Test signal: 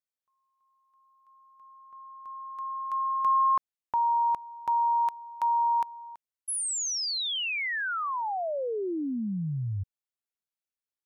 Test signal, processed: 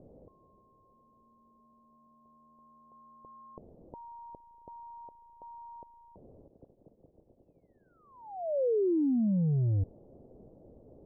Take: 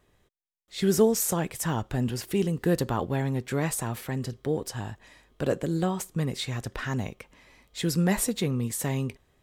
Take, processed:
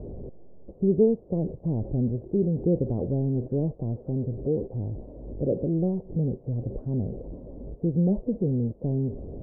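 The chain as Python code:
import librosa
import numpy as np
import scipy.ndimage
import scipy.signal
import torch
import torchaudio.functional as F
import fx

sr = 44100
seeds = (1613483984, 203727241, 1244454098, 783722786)

y = x + 0.5 * 10.0 ** (-29.0 / 20.0) * np.sign(x)
y = scipy.signal.sosfilt(scipy.signal.butter(6, 580.0, 'lowpass', fs=sr, output='sos'), y)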